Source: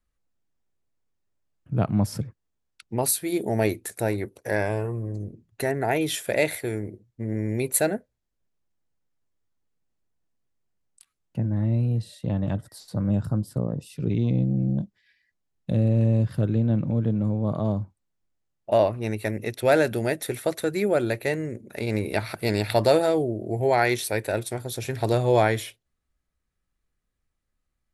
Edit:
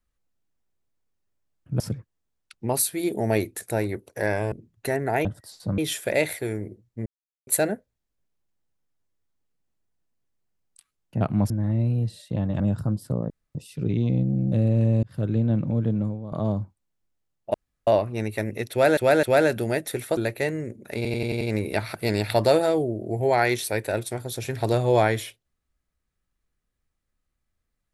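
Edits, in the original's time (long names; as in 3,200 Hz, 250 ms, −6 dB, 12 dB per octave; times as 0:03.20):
0:01.80–0:02.09: move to 0:11.43
0:04.81–0:05.27: remove
0:07.28–0:07.69: silence
0:12.53–0:13.06: move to 0:06.00
0:13.76: splice in room tone 0.25 s
0:14.73–0:15.72: remove
0:16.23–0:16.60: fade in equal-power
0:17.21–0:17.52: fade out quadratic, to −12 dB
0:18.74: splice in room tone 0.33 s
0:19.58–0:19.84: repeat, 3 plays
0:20.52–0:21.02: remove
0:21.81: stutter 0.09 s, 6 plays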